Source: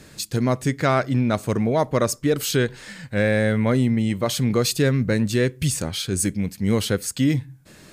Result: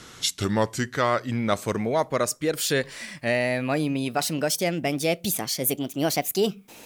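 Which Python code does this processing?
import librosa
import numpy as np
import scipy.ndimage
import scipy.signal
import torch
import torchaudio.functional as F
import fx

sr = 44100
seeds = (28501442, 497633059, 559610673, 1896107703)

y = fx.speed_glide(x, sr, from_pct=80, to_pct=151)
y = fx.low_shelf(y, sr, hz=300.0, db=-10.5)
y = fx.rider(y, sr, range_db=5, speed_s=0.5)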